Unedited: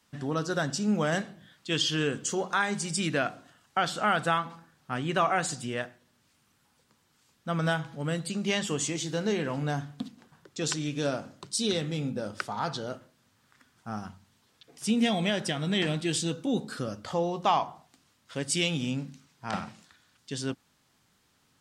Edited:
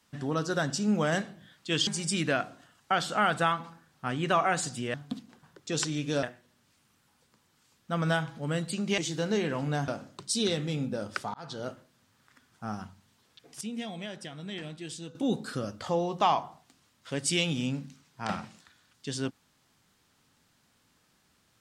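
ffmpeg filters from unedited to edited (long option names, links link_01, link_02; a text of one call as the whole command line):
ffmpeg -i in.wav -filter_complex "[0:a]asplit=9[link_01][link_02][link_03][link_04][link_05][link_06][link_07][link_08][link_09];[link_01]atrim=end=1.872[link_10];[link_02]atrim=start=2.728:end=5.802[link_11];[link_03]atrim=start=9.828:end=11.122[link_12];[link_04]atrim=start=5.798:end=8.552[link_13];[link_05]atrim=start=8.928:end=9.832[link_14];[link_06]atrim=start=11.118:end=12.58,asetpts=PTS-STARTPTS,afade=type=out:start_time=1.458:duration=0.004:curve=hsin[link_15];[link_07]atrim=start=12.58:end=14.852,asetpts=PTS-STARTPTS,afade=type=in:duration=0.32[link_16];[link_08]atrim=start=14.848:end=16.392,asetpts=PTS-STARTPTS,volume=-11.5dB[link_17];[link_09]atrim=start=16.388[link_18];[link_10][link_11]acrossfade=duration=0.004:curve1=hsin:curve2=hsin[link_19];[link_19][link_12]acrossfade=duration=0.004:curve1=hsin:curve2=hsin[link_20];[link_20][link_13]acrossfade=duration=0.004:curve1=hsin:curve2=hsin[link_21];[link_21][link_14]acrossfade=duration=0.004:curve1=hsin:curve2=hsin[link_22];[link_15][link_16]concat=n=2:v=0:a=1[link_23];[link_22][link_23]acrossfade=duration=0.004:curve1=hsin:curve2=hsin[link_24];[link_24][link_17]acrossfade=duration=0.004:curve1=hsin:curve2=hsin[link_25];[link_25][link_18]acrossfade=duration=0.004:curve1=hsin:curve2=hsin" out.wav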